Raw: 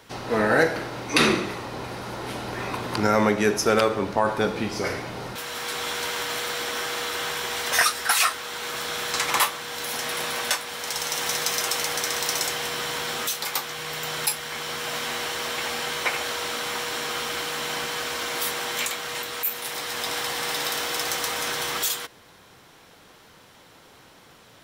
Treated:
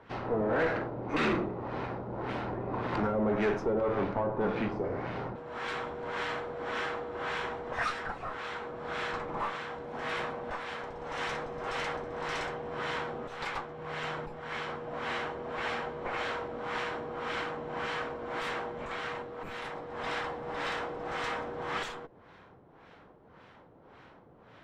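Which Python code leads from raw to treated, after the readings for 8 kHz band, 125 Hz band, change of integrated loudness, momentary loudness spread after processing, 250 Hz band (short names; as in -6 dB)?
-28.0 dB, -4.0 dB, -9.0 dB, 9 LU, -5.5 dB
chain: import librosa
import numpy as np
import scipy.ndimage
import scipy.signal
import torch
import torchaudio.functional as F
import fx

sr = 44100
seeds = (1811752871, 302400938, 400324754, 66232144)

y = fx.tube_stage(x, sr, drive_db=25.0, bias=0.6)
y = fx.dynamic_eq(y, sr, hz=7700.0, q=3.1, threshold_db=-53.0, ratio=4.0, max_db=5)
y = fx.filter_lfo_lowpass(y, sr, shape='sine', hz=1.8, low_hz=600.0, high_hz=2300.0, q=0.81)
y = y * 10.0 ** (1.0 / 20.0)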